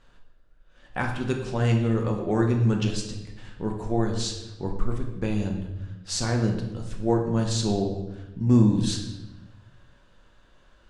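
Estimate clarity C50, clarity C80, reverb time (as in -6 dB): 6.0 dB, 8.5 dB, 1.0 s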